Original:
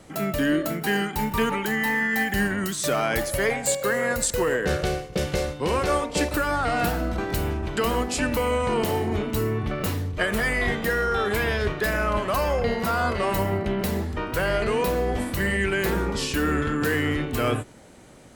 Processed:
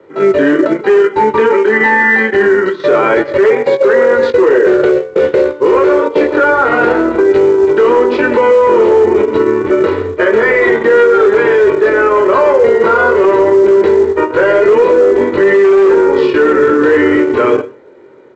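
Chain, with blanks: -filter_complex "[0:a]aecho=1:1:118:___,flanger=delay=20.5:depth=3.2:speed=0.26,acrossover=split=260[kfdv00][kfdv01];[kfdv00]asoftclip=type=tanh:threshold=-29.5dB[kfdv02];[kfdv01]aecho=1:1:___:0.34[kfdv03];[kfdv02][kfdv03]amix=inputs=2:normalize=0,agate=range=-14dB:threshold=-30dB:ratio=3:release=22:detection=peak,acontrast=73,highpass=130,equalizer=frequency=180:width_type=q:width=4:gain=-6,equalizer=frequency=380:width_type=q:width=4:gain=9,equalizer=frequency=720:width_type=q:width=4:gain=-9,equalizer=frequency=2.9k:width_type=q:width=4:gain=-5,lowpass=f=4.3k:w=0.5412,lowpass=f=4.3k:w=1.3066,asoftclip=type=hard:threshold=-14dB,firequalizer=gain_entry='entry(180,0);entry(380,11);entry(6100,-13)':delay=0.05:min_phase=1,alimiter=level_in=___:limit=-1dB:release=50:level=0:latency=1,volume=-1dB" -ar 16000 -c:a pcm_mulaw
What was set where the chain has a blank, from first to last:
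0.211, 2.1, 10.5dB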